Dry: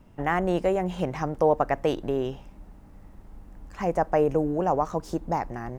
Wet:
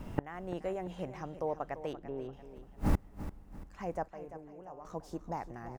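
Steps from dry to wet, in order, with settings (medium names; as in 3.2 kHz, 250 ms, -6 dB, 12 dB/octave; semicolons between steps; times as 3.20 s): 1.93–2.33 s: low-pass 1.9 kHz 12 dB/octave; level rider gain up to 15 dB; inverted gate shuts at -26 dBFS, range -32 dB; 4.08–4.85 s: feedback comb 81 Hz, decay 1.8 s, harmonics odd, mix 80%; on a send: feedback delay 341 ms, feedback 39%, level -13 dB; on the sum: trim +9.5 dB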